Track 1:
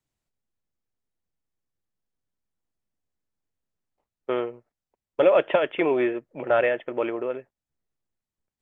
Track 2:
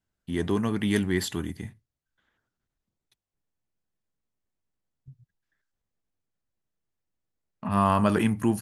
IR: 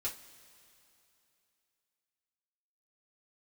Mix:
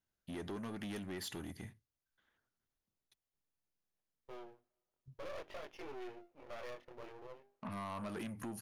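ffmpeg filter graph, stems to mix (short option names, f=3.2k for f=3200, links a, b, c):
-filter_complex "[0:a]bandreject=f=50:t=h:w=6,bandreject=f=100:t=h:w=6,bandreject=f=150:t=h:w=6,bandreject=f=200:t=h:w=6,bandreject=f=250:t=h:w=6,bandreject=f=300:t=h:w=6,bandreject=f=350:t=h:w=6,bandreject=f=400:t=h:w=6,flanger=delay=18.5:depth=6.2:speed=0.51,aeval=exprs='max(val(0),0)':c=same,volume=-15dB,asplit=2[a][b];[b]volume=-22.5dB[c];[1:a]acompressor=threshold=-28dB:ratio=6,volume=-5.5dB[d];[2:a]atrim=start_sample=2205[e];[c][e]afir=irnorm=-1:irlink=0[f];[a][d][f]amix=inputs=3:normalize=0,asoftclip=type=tanh:threshold=-36.5dB,bass=f=250:g=-4,treble=f=4k:g=2,bandreject=f=7.8k:w=6.3"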